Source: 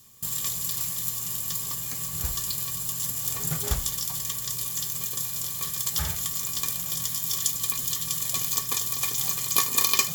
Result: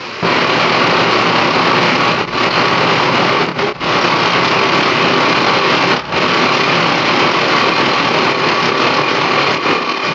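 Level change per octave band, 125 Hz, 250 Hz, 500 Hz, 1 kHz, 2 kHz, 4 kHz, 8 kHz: +14.5, +27.0, +31.5, +28.0, +26.5, +17.5, −6.0 decibels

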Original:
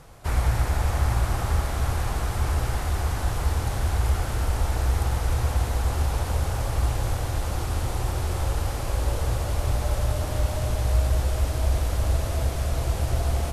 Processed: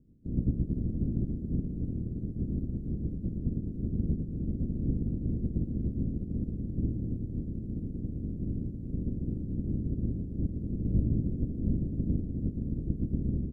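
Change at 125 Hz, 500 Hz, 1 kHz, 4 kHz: −7.0 dB, −12.0 dB, below −35 dB, below −40 dB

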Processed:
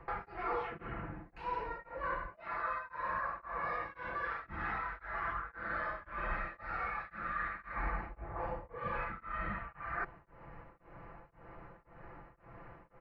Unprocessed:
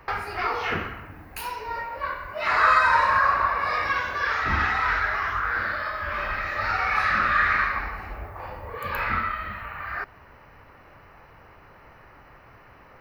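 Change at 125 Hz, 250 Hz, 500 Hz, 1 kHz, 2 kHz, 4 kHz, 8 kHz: −10.5 dB, −8.5 dB, −9.5 dB, −14.5 dB, −17.0 dB, −23.5 dB, can't be measured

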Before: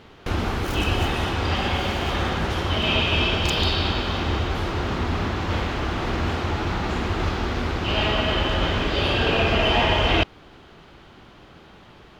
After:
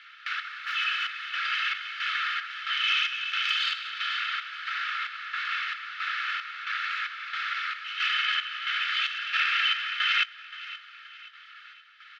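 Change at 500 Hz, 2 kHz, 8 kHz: below −40 dB, 0.0 dB, below −10 dB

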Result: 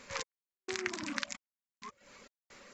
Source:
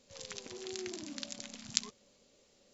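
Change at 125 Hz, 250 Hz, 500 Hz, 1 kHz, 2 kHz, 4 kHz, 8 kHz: −0.5 dB, +1.5 dB, +1.0 dB, +10.0 dB, +10.0 dB, −3.5 dB, can't be measured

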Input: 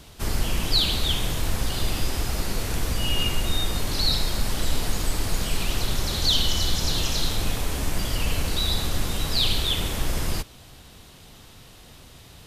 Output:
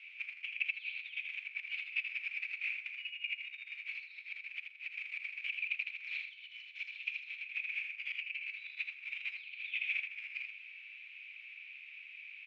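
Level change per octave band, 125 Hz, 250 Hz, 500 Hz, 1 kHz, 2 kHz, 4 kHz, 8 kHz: below −40 dB, below −40 dB, below −40 dB, below −35 dB, −1.5 dB, −23.0 dB, below −40 dB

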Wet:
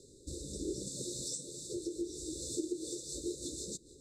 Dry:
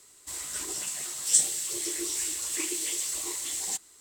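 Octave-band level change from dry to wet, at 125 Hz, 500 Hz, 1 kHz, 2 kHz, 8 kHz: can't be measured, +3.5 dB, below −40 dB, below −40 dB, −15.0 dB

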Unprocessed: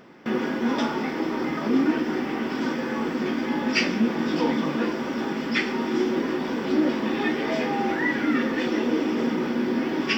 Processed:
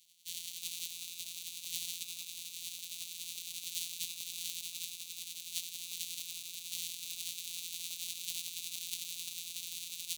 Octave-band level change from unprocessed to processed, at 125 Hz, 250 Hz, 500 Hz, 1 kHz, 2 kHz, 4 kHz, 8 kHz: −31.0 dB, below −40 dB, below −40 dB, below −40 dB, −23.0 dB, −5.0 dB, can't be measured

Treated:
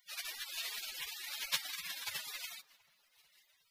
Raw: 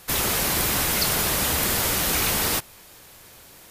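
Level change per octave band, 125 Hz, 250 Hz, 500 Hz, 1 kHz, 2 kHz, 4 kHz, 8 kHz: −39.5, −40.0, −32.5, −24.5, −16.0, −14.0, −21.0 decibels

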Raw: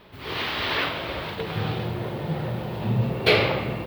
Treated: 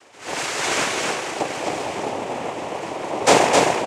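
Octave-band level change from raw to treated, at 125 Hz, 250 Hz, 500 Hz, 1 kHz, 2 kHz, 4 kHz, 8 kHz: −11.0 dB, +2.0 dB, +5.5 dB, +10.0 dB, +3.0 dB, +2.0 dB, can't be measured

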